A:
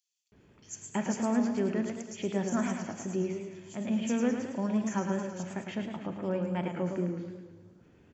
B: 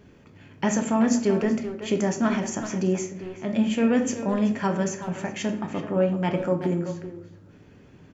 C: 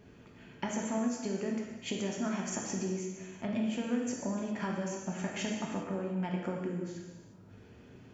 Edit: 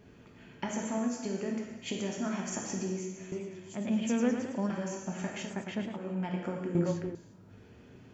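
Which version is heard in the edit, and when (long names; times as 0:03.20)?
C
0:03.32–0:04.70: punch in from A
0:05.46–0:06.00: punch in from A, crossfade 0.24 s
0:06.75–0:07.15: punch in from B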